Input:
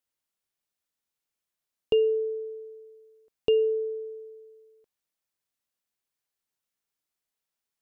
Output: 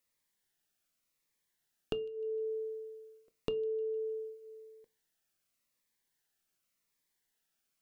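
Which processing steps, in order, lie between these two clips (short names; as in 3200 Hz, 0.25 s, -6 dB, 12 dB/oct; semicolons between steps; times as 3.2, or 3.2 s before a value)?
bell 1800 Hz +5 dB 0.49 oct; in parallel at -2.5 dB: limiter -22.5 dBFS, peak gain reduction 8.5 dB; on the sum: compressor 10:1, threshold -32 dBFS, peak gain reduction 15.5 dB; thin delay 0.153 s, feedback 46%, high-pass 2700 Hz, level -22 dB; on a send at -14 dB: reverb RT60 0.25 s, pre-delay 3 ms; on the sum: cascading phaser falling 0.88 Hz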